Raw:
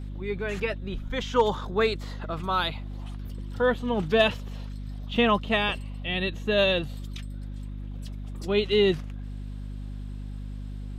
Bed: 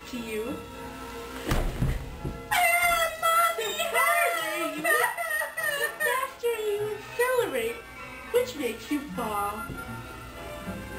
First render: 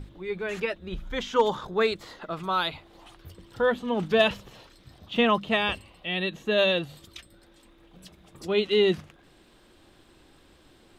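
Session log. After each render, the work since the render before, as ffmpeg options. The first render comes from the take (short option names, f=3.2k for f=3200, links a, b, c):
-af "bandreject=f=50:t=h:w=6,bandreject=f=100:t=h:w=6,bandreject=f=150:t=h:w=6,bandreject=f=200:t=h:w=6,bandreject=f=250:t=h:w=6"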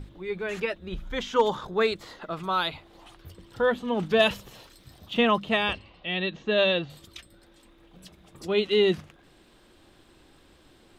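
-filter_complex "[0:a]asettb=1/sr,asplit=3[a][b][c];[a]atrim=end=4.224[d];[b]atrim=start=4.22:end=5.14,asetpts=PTS-STARTPTS,afade=t=in:d=0.004:c=qsin,afade=t=out:st=0.916:d=0.004:c=qsin,highshelf=f=7.5k:g=11.5[e];[c]atrim=start=5.136[f];[d][e]acrossfade=d=0.004:c1=hsin:c2=qsin[g];[g][f]acrossfade=d=0.004:c1=qsin:c2=hsin,asettb=1/sr,asplit=3[h][i][j];[h]atrim=end=5.734[k];[i]atrim=start=5.73:end=6.9,asetpts=PTS-STARTPTS,afade=t=in:d=0.004:c=qsin,afade=t=out:st=1.166:d=0.004:c=qsin,lowpass=f=5.4k:w=0.5412,lowpass=f=5.4k:w=1.3066[l];[j]atrim=start=6.896[m];[k][l]acrossfade=d=0.004:c1=hsin:c2=qsin[n];[n][m]acrossfade=d=0.004:c1=qsin:c2=hsin"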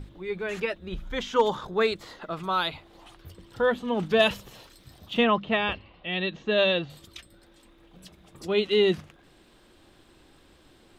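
-filter_complex "[0:a]asettb=1/sr,asplit=3[a][b][c];[a]atrim=end=5.244[d];[b]atrim=start=5.24:end=6.13,asetpts=PTS-STARTPTS,afade=t=in:d=0.004:c=qsin,afade=t=out:st=0.886:d=0.004:c=qsin,lowpass=3.4k[e];[c]atrim=start=6.126[f];[d][e]acrossfade=d=0.004:c1=hsin:c2=qsin[g];[g][f]acrossfade=d=0.004:c1=qsin:c2=hsin"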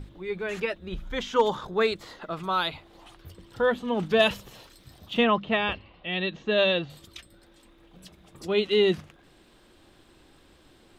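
-af anull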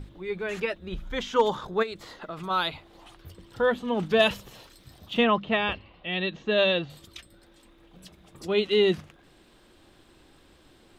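-filter_complex "[0:a]asplit=3[a][b][c];[a]afade=t=out:st=1.82:d=0.02[d];[b]acompressor=threshold=-31dB:ratio=6:attack=3.2:release=140:knee=1:detection=peak,afade=t=in:st=1.82:d=0.02,afade=t=out:st=2.49:d=0.02[e];[c]afade=t=in:st=2.49:d=0.02[f];[d][e][f]amix=inputs=3:normalize=0"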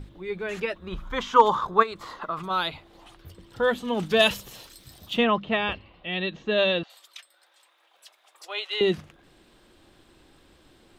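-filter_complex "[0:a]asettb=1/sr,asplit=3[a][b][c];[a]atrim=end=0.754[d];[b]atrim=start=0.75:end=2.42,asetpts=PTS-STARTPTS,afade=t=in:d=0.004:c=qsin,afade=t=out:st=1.666:d=0.004:c=qsin,equalizer=f=1.1k:t=o:w=0.62:g=14.5[e];[c]atrim=start=2.416[f];[d][e]acrossfade=d=0.004:c1=hsin:c2=qsin[g];[g][f]acrossfade=d=0.004:c1=qsin:c2=hsin,asettb=1/sr,asplit=3[h][i][j];[h]atrim=end=3.624[k];[i]atrim=start=3.62:end=5.16,asetpts=PTS-STARTPTS,afade=t=in:d=0.004:c=qsin,afade=t=out:st=1.536:d=0.004:c=qsin,highshelf=f=3.9k:g=10[l];[j]atrim=start=5.156[m];[k][l]acrossfade=d=0.004:c1=hsin:c2=qsin[n];[n][m]acrossfade=d=0.004:c1=qsin:c2=hsin,asettb=1/sr,asplit=3[o][p][q];[o]atrim=end=6.834[r];[p]atrim=start=6.83:end=8.81,asetpts=PTS-STARTPTS,afade=t=in:d=0.004:c=qsin,afade=t=out:st=1.976:d=0.004:c=qsin,highpass=f=680:w=0.5412,highpass=f=680:w=1.3066[s];[q]atrim=start=8.806[t];[r][s]acrossfade=d=0.004:c1=hsin:c2=qsin[u];[u][t]acrossfade=d=0.004:c1=qsin:c2=hsin"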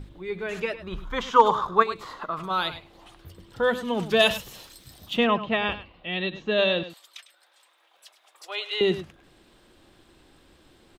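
-af "aecho=1:1:102:0.211"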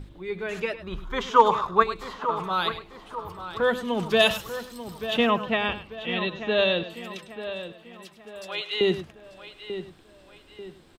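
-filter_complex "[0:a]asplit=2[a][b];[b]adelay=890,lowpass=f=3.4k:p=1,volume=-11dB,asplit=2[c][d];[d]adelay=890,lowpass=f=3.4k:p=1,volume=0.43,asplit=2[e][f];[f]adelay=890,lowpass=f=3.4k:p=1,volume=0.43,asplit=2[g][h];[h]adelay=890,lowpass=f=3.4k:p=1,volume=0.43[i];[a][c][e][g][i]amix=inputs=5:normalize=0"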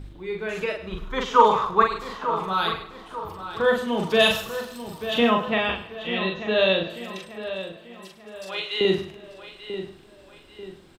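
-filter_complex "[0:a]asplit=2[a][b];[b]adelay=42,volume=-3dB[c];[a][c]amix=inputs=2:normalize=0,aecho=1:1:164|328|492|656:0.0841|0.0429|0.0219|0.0112"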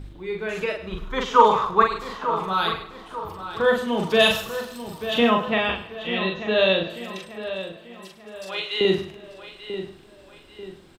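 -af "volume=1dB"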